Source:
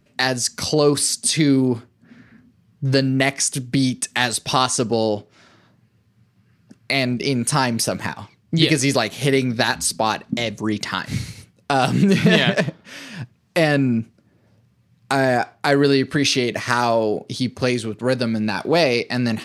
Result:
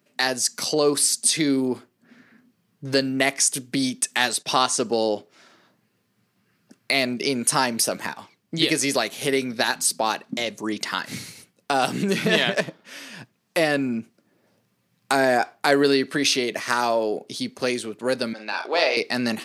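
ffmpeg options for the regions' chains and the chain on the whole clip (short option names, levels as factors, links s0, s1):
-filter_complex "[0:a]asettb=1/sr,asplit=3[s0][s1][s2];[s0]atrim=end=4.294[s3];[s1]atrim=start=4.29:end=4.85,asetpts=PTS-STARTPTS,afade=t=in:d=0.004:c=qsin,afade=t=out:st=0.556:d=0.004:c=qsin,agate=range=0.2:threshold=0.0126:ratio=16:release=100:detection=peak,highshelf=f=10000:g=-8.5,acompressor=mode=upward:threshold=0.0316:ratio=2.5:attack=3.2:release=140:knee=2.83:detection=peak[s4];[s2]atrim=start=4.846[s5];[s3][s4]acrossfade=d=0.004:c1=hsin:c2=qsin[s6];[s6][s5]acrossfade=d=0.004:c1=qsin:c2=hsin,asettb=1/sr,asplit=3[s7][s8][s9];[s7]atrim=end=18.334[s10];[s8]atrim=start=18.33:end=18.97,asetpts=PTS-STARTPTS,afade=t=in:d=0.004:c=qsin,afade=t=out:st=0.636:d=0.004:c=qsin,highpass=620,lowpass=4500,asplit=2[s11][s12];[s12]adelay=47,volume=0.501[s13];[s11][s13]amix=inputs=2:normalize=0,atrim=end_sample=28224[s14];[s9]atrim=start=18.966[s15];[s10][s14]acrossfade=d=0.004:c1=hsin:c2=qsin[s16];[s16][s15]acrossfade=d=0.004:c1=qsin:c2=hsin,highpass=260,highshelf=f=11000:g=10,dynaudnorm=f=920:g=3:m=3.76,volume=0.708"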